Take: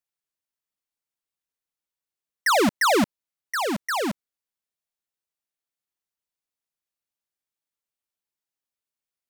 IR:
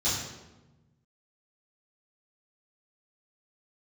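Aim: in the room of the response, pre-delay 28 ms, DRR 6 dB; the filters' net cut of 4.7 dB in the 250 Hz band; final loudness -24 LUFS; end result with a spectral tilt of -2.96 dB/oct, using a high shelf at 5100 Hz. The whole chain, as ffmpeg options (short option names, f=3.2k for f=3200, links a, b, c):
-filter_complex "[0:a]equalizer=f=250:t=o:g=-6,highshelf=f=5.1k:g=-3.5,asplit=2[a][b];[1:a]atrim=start_sample=2205,adelay=28[c];[b][c]afir=irnorm=-1:irlink=0,volume=-15.5dB[d];[a][d]amix=inputs=2:normalize=0,volume=-0.5dB"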